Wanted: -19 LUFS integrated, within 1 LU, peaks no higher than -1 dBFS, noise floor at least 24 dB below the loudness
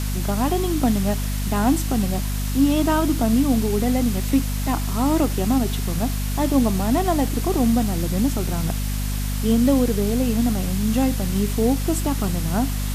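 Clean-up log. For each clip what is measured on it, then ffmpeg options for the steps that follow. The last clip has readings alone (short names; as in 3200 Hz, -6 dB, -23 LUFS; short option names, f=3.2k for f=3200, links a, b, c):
hum 50 Hz; harmonics up to 250 Hz; hum level -22 dBFS; noise floor -24 dBFS; noise floor target -46 dBFS; loudness -21.5 LUFS; peak -6.5 dBFS; loudness target -19.0 LUFS
-> -af "bandreject=f=50:t=h:w=6,bandreject=f=100:t=h:w=6,bandreject=f=150:t=h:w=6,bandreject=f=200:t=h:w=6,bandreject=f=250:t=h:w=6"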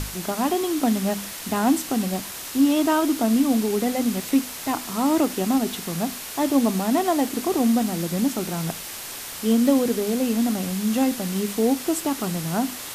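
hum none; noise floor -35 dBFS; noise floor target -47 dBFS
-> -af "afftdn=nr=12:nf=-35"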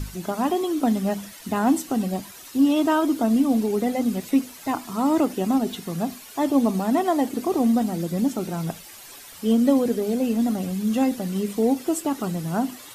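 noise floor -43 dBFS; noise floor target -48 dBFS
-> -af "afftdn=nr=6:nf=-43"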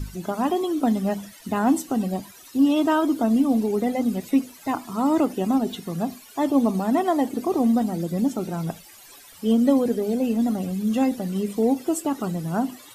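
noise floor -47 dBFS; noise floor target -48 dBFS
-> -af "afftdn=nr=6:nf=-47"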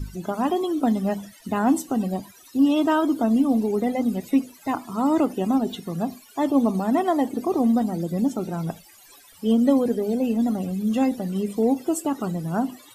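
noise floor -51 dBFS; loudness -23.5 LUFS; peak -8.0 dBFS; loudness target -19.0 LUFS
-> -af "volume=4.5dB"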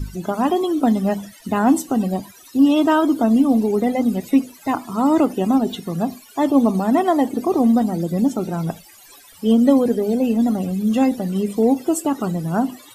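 loudness -19.0 LUFS; peak -3.5 dBFS; noise floor -46 dBFS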